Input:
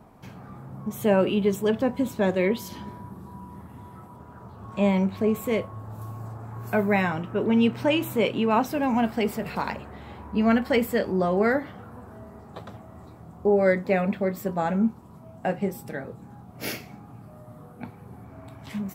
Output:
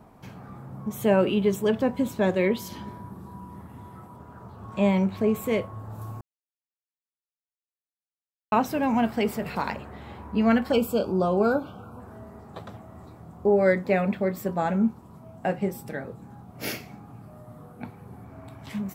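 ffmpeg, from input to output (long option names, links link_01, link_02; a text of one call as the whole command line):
ffmpeg -i in.wav -filter_complex "[0:a]asettb=1/sr,asplit=3[link_01][link_02][link_03];[link_01]atrim=end=10.724[link_04];[link_02]atrim=start=10.72:end=12,asetpts=PTS-STARTPTS,afade=type=in:duration=0.004:curve=qsin,afade=type=out:start_time=1.276:duration=0.004:curve=qsin,asuperstop=centerf=1900:order=12:qfactor=2.4[link_05];[link_03]atrim=start=11.996[link_06];[link_04][link_05]acrossfade=duration=0.004:curve1=hsin:curve2=qsin[link_07];[link_07][link_06]acrossfade=duration=0.004:curve1=qsin:curve2=hsin,asplit=3[link_08][link_09][link_10];[link_08]atrim=end=6.21,asetpts=PTS-STARTPTS,afade=type=out:start_time=6.206:duration=0.004:curve=hsin[link_11];[link_09]atrim=start=6.21:end=8.52,asetpts=PTS-STARTPTS,volume=0[link_12];[link_10]atrim=start=8.52,asetpts=PTS-STARTPTS,afade=type=in:duration=0.004:curve=hsin[link_13];[link_11][link_12][link_13]concat=n=3:v=0:a=1" out.wav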